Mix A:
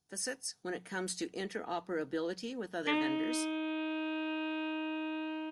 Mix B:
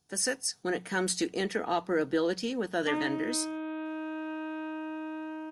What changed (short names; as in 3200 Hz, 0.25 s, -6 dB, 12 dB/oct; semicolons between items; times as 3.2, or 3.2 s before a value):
speech +8.0 dB; background: add resonant high shelf 2100 Hz -8.5 dB, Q 1.5